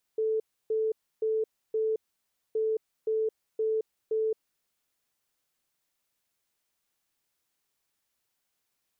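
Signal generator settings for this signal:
beeps in groups sine 439 Hz, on 0.22 s, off 0.30 s, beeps 4, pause 0.59 s, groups 2, −24.5 dBFS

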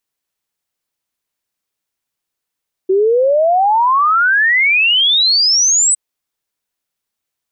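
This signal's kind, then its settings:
exponential sine sweep 370 Hz → 8,200 Hz 3.06 s −9 dBFS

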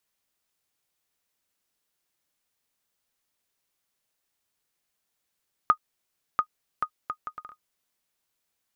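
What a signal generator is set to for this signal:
bouncing ball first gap 0.69 s, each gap 0.63, 1,240 Hz, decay 76 ms −8 dBFS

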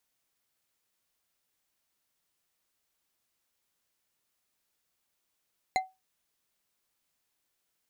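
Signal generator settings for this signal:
struck glass bar, lowest mode 754 Hz, decay 0.22 s, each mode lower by 5 dB, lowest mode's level −20.5 dB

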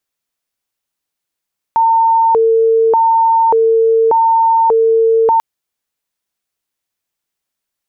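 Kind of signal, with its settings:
siren hi-lo 451–907 Hz 0.85 per second sine −7.5 dBFS 3.64 s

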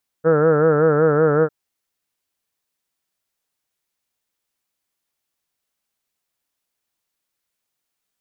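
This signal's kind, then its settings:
vowel by formant synthesis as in heard, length 1.25 s, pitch 156 Hz, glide −0.5 semitones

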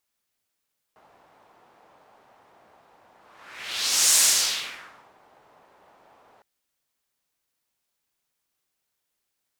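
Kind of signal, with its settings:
pass-by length 5.46 s, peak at 0:03.22, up 1.09 s, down 1.03 s, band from 810 Hz, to 7,400 Hz, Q 1.6, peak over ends 40 dB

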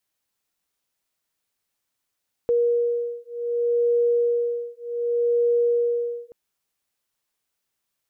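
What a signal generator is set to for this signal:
two tones that beat 475 Hz, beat 0.66 Hz, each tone −22.5 dBFS 3.83 s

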